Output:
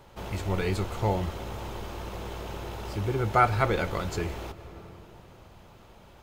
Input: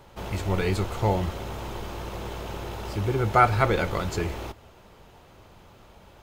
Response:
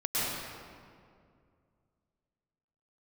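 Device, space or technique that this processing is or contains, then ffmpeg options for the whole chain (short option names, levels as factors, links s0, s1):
ducked reverb: -filter_complex "[0:a]asplit=3[s0][s1][s2];[1:a]atrim=start_sample=2205[s3];[s1][s3]afir=irnorm=-1:irlink=0[s4];[s2]apad=whole_len=274368[s5];[s4][s5]sidechaincompress=threshold=0.0112:ratio=8:attack=6.4:release=390,volume=0.15[s6];[s0][s6]amix=inputs=2:normalize=0,volume=0.708"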